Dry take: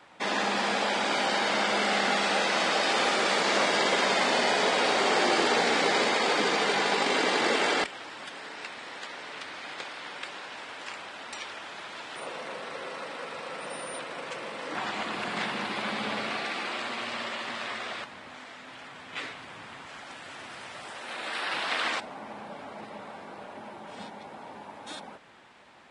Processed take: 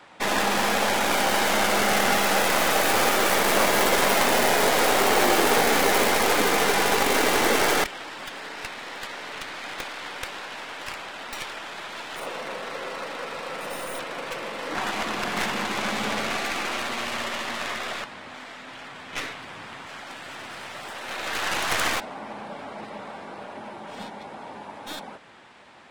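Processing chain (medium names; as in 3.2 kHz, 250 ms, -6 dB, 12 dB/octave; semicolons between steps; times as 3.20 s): tracing distortion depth 0.26 ms; trim +4.5 dB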